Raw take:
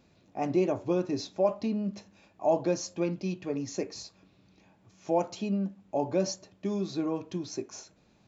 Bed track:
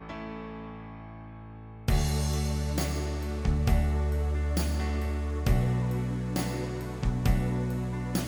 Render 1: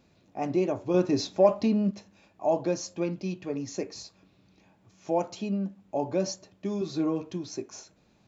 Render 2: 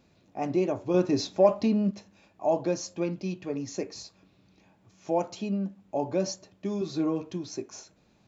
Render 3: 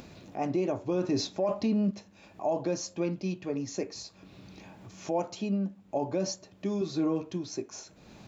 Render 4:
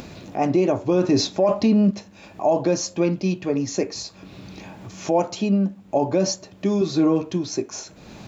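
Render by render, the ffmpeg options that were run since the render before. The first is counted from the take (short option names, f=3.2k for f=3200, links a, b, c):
-filter_complex "[0:a]asettb=1/sr,asplit=3[a][b][c];[a]atrim=end=0.944[d];[b]atrim=start=0.94:end=1.91,asetpts=PTS-STARTPTS,afade=t=in:d=0.004:c=qsin,afade=t=out:st=0.966:d=0.004:c=qsin,acontrast=46[e];[c]atrim=start=1.906[f];[d][e]acrossfade=d=0.004:c1=hsin:c2=qsin[g];[g][f]acrossfade=d=0.004:c1=qsin:c2=hsin,asettb=1/sr,asplit=3[h][i][j];[h]atrim=end=6.804[k];[i]atrim=start=6.8:end=7.31,asetpts=PTS-STARTPTS,afade=t=in:d=0.004:c=qsin,afade=t=out:st=0.506:d=0.004:c=qsin,asplit=2[l][m];[m]adelay=13,volume=-3.5dB[n];[l][n]amix=inputs=2:normalize=0,atrim=end_sample=22491[o];[j]atrim=start=7.306[p];[k][o]acrossfade=d=0.004:c1=hsin:c2=qsin[q];[q][p]acrossfade=d=0.004:c1=qsin:c2=hsin"
-af anull
-af "alimiter=limit=-20.5dB:level=0:latency=1:release=26,acompressor=mode=upward:threshold=-37dB:ratio=2.5"
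-af "volume=10dB"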